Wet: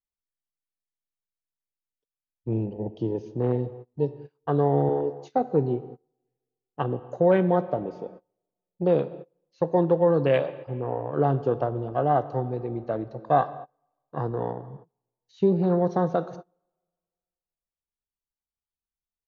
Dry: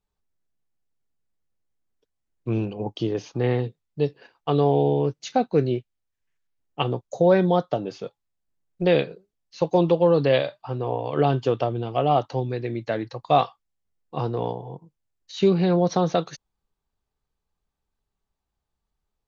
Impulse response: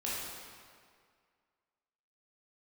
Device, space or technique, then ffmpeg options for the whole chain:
keyed gated reverb: -filter_complex "[0:a]asettb=1/sr,asplit=3[a][b][c];[a]atrim=end=4.894[d];[b]atrim=start=4.89:end=5.52,asetpts=PTS-STARTPTS,afade=t=in:d=0.004:c=qsin,afade=t=out:st=0.626:d=0.004:c=qsin,highpass=f=250:w=0.5412,highpass=f=250:w=1.3066[e];[c]atrim=start=5.516[f];[d][e]acrossfade=d=0.004:c1=hsin:c2=qsin[g];[g][f]acrossfade=d=0.004:c1=qsin:c2=hsin,afwtdn=0.0355,asettb=1/sr,asplit=3[h][i][j];[h]atrim=end=10.684[k];[i]atrim=start=10.68:end=11.14,asetpts=PTS-STARTPTS,afade=t=in:d=0.004:c=qsin,afade=t=out:st=0.456:d=0.004:c=qsin,equalizer=f=4.5k:w=0.62:g=-13.5[l];[j]atrim=start=11.136[m];[k][l]acrossfade=d=0.004:c1=hsin:c2=qsin[n];[n][m]acrossfade=d=0.004:c1=qsin:c2=hsin,asplit=3[o][p][q];[1:a]atrim=start_sample=2205[r];[p][r]afir=irnorm=-1:irlink=0[s];[q]apad=whole_len=850081[t];[s][t]sidechaingate=range=-29dB:threshold=-46dB:ratio=16:detection=peak,volume=-16dB[u];[o][u]amix=inputs=2:normalize=0,volume=-3dB"

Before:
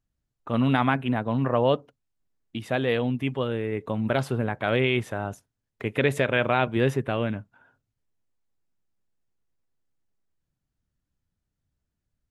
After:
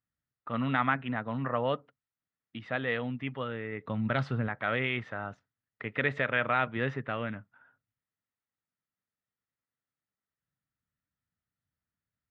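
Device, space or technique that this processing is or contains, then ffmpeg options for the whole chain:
guitar cabinet: -filter_complex "[0:a]highpass=90,equalizer=f=370:t=q:w=4:g=-6,equalizer=f=1.3k:t=q:w=4:g=9,equalizer=f=1.9k:t=q:w=4:g=9,lowpass=f=4.4k:w=0.5412,lowpass=f=4.4k:w=1.3066,asettb=1/sr,asplit=3[a][b][c];[a]atrim=end=3.854[d];[b]atrim=start=3.85:end=4.48,asetpts=PTS-STARTPTS,afade=t=in:d=0.004:c=qsin,afade=t=out:st=0.626:d=0.004:c=qsin,bass=f=250:g=7,treble=f=4k:g=8[e];[c]atrim=start=4.476[f];[d][e]acrossfade=d=0.004:c1=hsin:c2=qsin[g];[g][f]acrossfade=d=0.004:c1=qsin:c2=hsin,volume=-8dB"

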